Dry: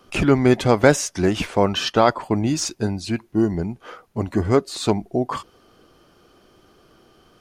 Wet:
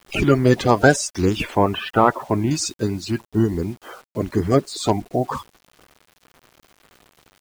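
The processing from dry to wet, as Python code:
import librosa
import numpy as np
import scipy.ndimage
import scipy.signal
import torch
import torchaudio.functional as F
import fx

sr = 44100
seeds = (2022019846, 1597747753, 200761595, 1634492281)

y = fx.spec_quant(x, sr, step_db=30)
y = fx.lowpass(y, sr, hz=2800.0, slope=24, at=(1.55, 2.51))
y = fx.quant_dither(y, sr, seeds[0], bits=8, dither='none')
y = y * 10.0 ** (1.0 / 20.0)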